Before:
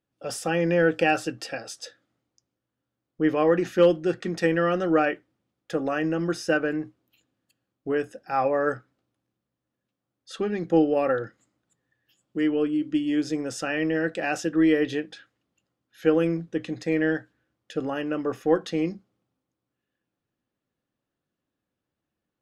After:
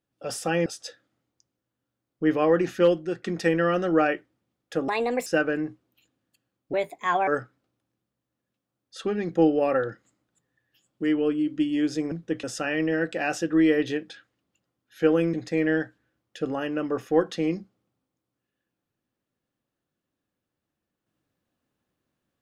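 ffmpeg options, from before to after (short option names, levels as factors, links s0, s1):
-filter_complex "[0:a]asplit=10[s0][s1][s2][s3][s4][s5][s6][s7][s8][s9];[s0]atrim=end=0.662[s10];[s1]atrim=start=1.638:end=4.21,asetpts=PTS-STARTPTS,afade=t=out:st=2.012:d=0.56:silence=0.473151[s11];[s2]atrim=start=4.21:end=5.864,asetpts=PTS-STARTPTS,afade=t=in:d=0.004:c=hsin:silence=0.473151[s12];[s3]atrim=start=5.86:end=6.42,asetpts=PTS-STARTPTS,asetrate=64386,aresample=44100,atrim=end_sample=16915,asetpts=PTS-STARTPTS[s13];[s4]atrim=start=6.416:end=7.894[s14];[s5]atrim=start=7.89:end=8.62,asetpts=PTS-STARTPTS,asetrate=59535,aresample=44100[s15];[s6]atrim=start=8.616:end=13.462[s16];[s7]atrim=start=16.358:end=16.682[s17];[s8]atrim=start=13.458:end=16.362[s18];[s9]atrim=start=16.678[s19];[s11][s12]concat=n=2:v=0:a=1[s20];[s10][s20]acrossfade=d=0.004:c1=hsin:c2=hsin[s21];[s21][s13]acrossfade=d=0.004:c1=hsin:c2=hsin[s22];[s22][s14]acrossfade=d=0.004:c1=hsin:c2=hsin[s23];[s23][s15]acrossfade=d=0.004:c1=hsin:c2=hsin[s24];[s24][s16]acrossfade=d=0.004:c1=hsin:c2=hsin[s25];[s25][s17]acrossfade=d=0.004:c1=hsin:c2=hsin[s26];[s26][s18]acrossfade=d=0.004:c1=hsin:c2=hsin[s27];[s27][s19]acrossfade=d=0.004:c1=hsin:c2=hsin"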